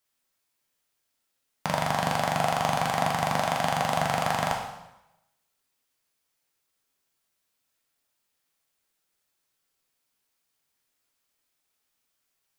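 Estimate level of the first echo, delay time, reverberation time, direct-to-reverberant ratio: none, none, 0.95 s, -0.5 dB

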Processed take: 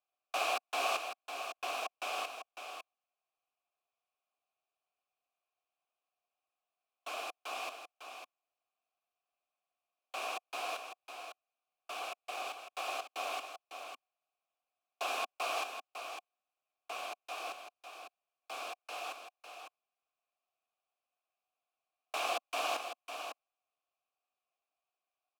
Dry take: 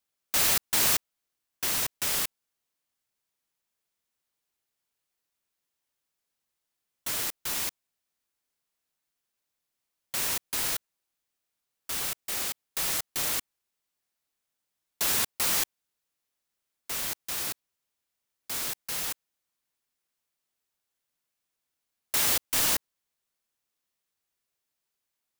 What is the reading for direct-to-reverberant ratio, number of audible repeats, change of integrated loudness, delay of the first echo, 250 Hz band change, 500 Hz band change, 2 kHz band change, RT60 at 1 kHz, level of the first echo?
none, 1, -12.5 dB, 0.552 s, -13.5 dB, +1.5 dB, -5.0 dB, none, -8.0 dB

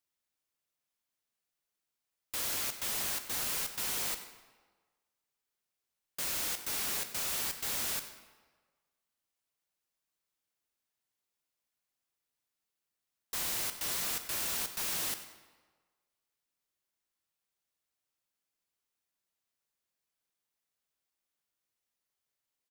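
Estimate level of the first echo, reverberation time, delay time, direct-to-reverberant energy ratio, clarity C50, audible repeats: -16.0 dB, 1.4 s, 96 ms, 8.0 dB, 9.5 dB, 1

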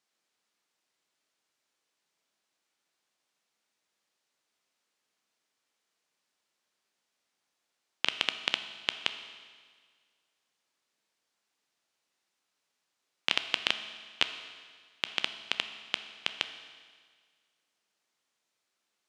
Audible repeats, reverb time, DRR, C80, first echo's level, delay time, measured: none, 1.7 s, 9.0 dB, 11.5 dB, none, none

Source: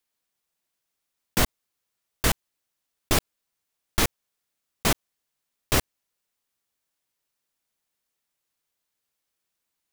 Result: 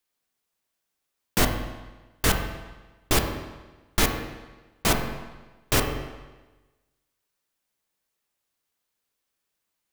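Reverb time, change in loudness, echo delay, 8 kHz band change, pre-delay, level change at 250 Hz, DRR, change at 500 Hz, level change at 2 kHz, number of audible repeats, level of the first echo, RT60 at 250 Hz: 1.2 s, 0.0 dB, none, 0.0 dB, 9 ms, +2.0 dB, 3.0 dB, +2.5 dB, +1.5 dB, none, none, 1.2 s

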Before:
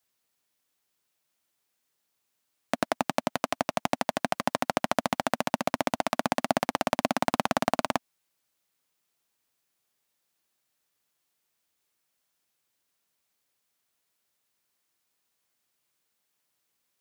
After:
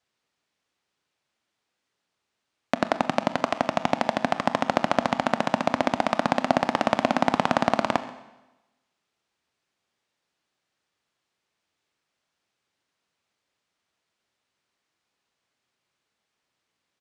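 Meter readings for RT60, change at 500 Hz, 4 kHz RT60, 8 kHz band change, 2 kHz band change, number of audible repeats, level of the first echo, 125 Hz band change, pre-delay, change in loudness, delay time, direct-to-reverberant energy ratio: 1.0 s, +4.5 dB, 1.0 s, -4.5 dB, +3.5 dB, 1, -20.5 dB, +4.5 dB, 24 ms, +4.0 dB, 0.134 s, 11.0 dB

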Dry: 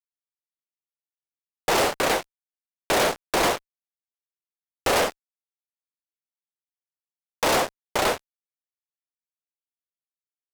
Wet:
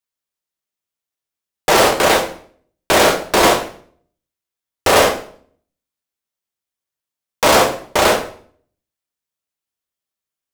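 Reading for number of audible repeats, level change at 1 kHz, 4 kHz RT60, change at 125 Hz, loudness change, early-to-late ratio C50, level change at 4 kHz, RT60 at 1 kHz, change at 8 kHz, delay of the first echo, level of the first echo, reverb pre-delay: none, +9.5 dB, 0.45 s, +10.0 dB, +9.5 dB, 9.5 dB, +9.5 dB, 0.50 s, +9.0 dB, none, none, 3 ms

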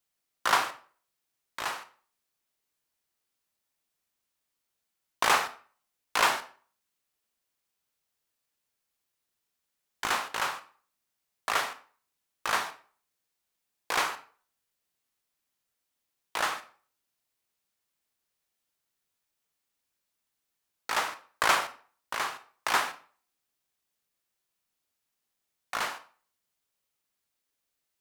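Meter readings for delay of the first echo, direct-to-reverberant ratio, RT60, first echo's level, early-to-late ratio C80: none, 10.0 dB, 0.45 s, none, 19.0 dB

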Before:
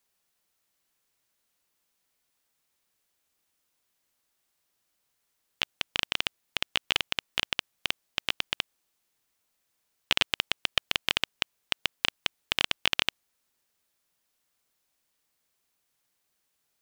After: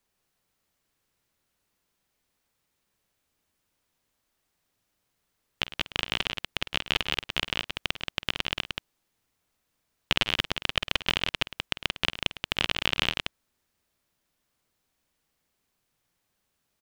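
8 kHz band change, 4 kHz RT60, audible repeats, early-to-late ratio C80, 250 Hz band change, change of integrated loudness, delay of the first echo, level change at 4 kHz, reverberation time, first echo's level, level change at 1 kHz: -1.5 dB, none, 3, none, +6.5 dB, +1.0 dB, 49 ms, +0.5 dB, none, -15.5 dB, +2.5 dB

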